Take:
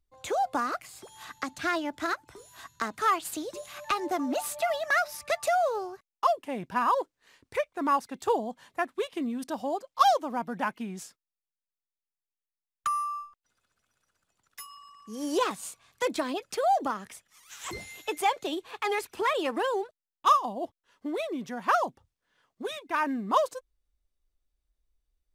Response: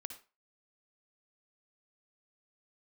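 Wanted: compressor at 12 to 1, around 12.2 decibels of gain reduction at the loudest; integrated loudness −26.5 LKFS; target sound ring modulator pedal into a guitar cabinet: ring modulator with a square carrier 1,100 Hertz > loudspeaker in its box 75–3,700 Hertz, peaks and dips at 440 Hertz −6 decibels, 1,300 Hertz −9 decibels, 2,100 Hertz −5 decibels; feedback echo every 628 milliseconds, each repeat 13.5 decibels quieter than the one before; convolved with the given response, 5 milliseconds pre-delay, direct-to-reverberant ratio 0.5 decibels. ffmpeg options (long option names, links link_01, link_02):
-filter_complex "[0:a]acompressor=threshold=-29dB:ratio=12,aecho=1:1:628|1256:0.211|0.0444,asplit=2[link_01][link_02];[1:a]atrim=start_sample=2205,adelay=5[link_03];[link_02][link_03]afir=irnorm=-1:irlink=0,volume=3dB[link_04];[link_01][link_04]amix=inputs=2:normalize=0,aeval=exprs='val(0)*sgn(sin(2*PI*1100*n/s))':channel_layout=same,highpass=75,equalizer=frequency=440:width_type=q:width=4:gain=-6,equalizer=frequency=1300:width_type=q:width=4:gain=-9,equalizer=frequency=2100:width_type=q:width=4:gain=-5,lowpass=frequency=3700:width=0.5412,lowpass=frequency=3700:width=1.3066,volume=9dB"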